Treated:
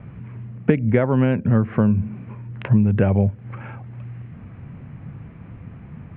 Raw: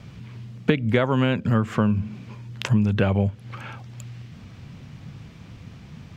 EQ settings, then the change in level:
dynamic equaliser 1,200 Hz, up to −6 dB, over −44 dBFS, Q 1.8
low-pass filter 2,400 Hz 24 dB per octave
high-frequency loss of the air 370 metres
+4.0 dB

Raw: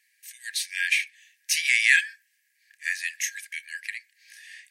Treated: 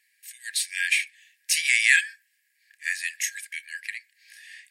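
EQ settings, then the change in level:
notch filter 6,100 Hz, Q 9.3
dynamic equaliser 8,300 Hz, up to +6 dB, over −45 dBFS, Q 1.4
0.0 dB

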